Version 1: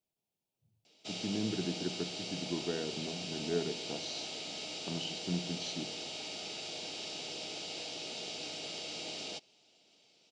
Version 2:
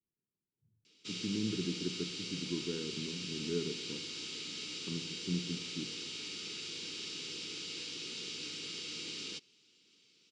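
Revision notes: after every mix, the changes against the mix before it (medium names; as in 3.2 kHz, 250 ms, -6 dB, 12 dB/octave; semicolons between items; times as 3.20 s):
speech: add low-pass 1 kHz; master: add Butterworth band-stop 690 Hz, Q 1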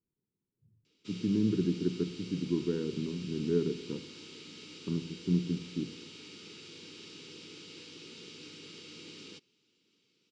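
speech +7.5 dB; master: add treble shelf 2 kHz -10.5 dB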